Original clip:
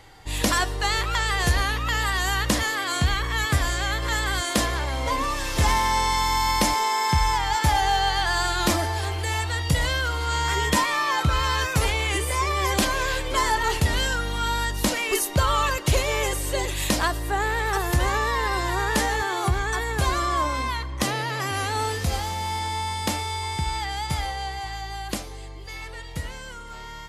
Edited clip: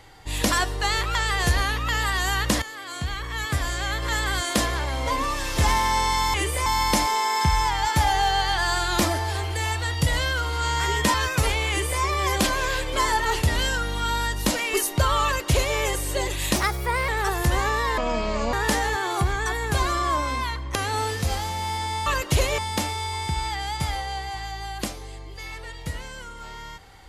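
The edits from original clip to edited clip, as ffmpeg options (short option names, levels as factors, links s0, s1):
-filter_complex "[0:a]asplit=12[s0][s1][s2][s3][s4][s5][s6][s7][s8][s9][s10][s11];[s0]atrim=end=2.62,asetpts=PTS-STARTPTS,afade=t=out:st=2.616:d=0.004:c=hsin:silence=0.223872[s12];[s1]atrim=start=2.62:end=6.342,asetpts=PTS-STARTPTS,afade=t=in:d=1.58:silence=0.223872[s13];[s2]atrim=start=12.078:end=12.402[s14];[s3]atrim=start=6.338:end=10.822[s15];[s4]atrim=start=11.518:end=16.944[s16];[s5]atrim=start=16.94:end=17.57,asetpts=PTS-STARTPTS,asetrate=52920,aresample=44100,atrim=end_sample=23152,asetpts=PTS-STARTPTS[s17];[s6]atrim=start=17.566:end=18.464[s18];[s7]atrim=start=18.46:end=18.8,asetpts=PTS-STARTPTS,asetrate=26901,aresample=44100,atrim=end_sample=24580,asetpts=PTS-STARTPTS[s19];[s8]atrim=start=18.796:end=21.022[s20];[s9]atrim=start=21.568:end=22.882[s21];[s10]atrim=start=15.618:end=16.142[s22];[s11]atrim=start=22.878[s23];[s12][s13]concat=n=2:v=0:a=1[s24];[s24][s14]acrossfade=d=0.004:c1=hsin:c2=hsin[s25];[s25][s15]acrossfade=d=0.004:c1=hsin:c2=hsin[s26];[s26][s16]acrossfade=d=0.004:c1=hsin:c2=hsin[s27];[s27][s17]acrossfade=d=0.004:c1=hsin:c2=hsin[s28];[s28][s18]acrossfade=d=0.004:c1=hsin:c2=hsin[s29];[s29][s19]acrossfade=d=0.004:c1=hsin:c2=hsin[s30];[s30][s20]acrossfade=d=0.004:c1=hsin:c2=hsin[s31];[s31][s21]acrossfade=d=0.004:c1=hsin:c2=hsin[s32];[s32][s22]acrossfade=d=0.004:c1=hsin:c2=hsin[s33];[s33][s23]acrossfade=d=0.004:c1=hsin:c2=hsin"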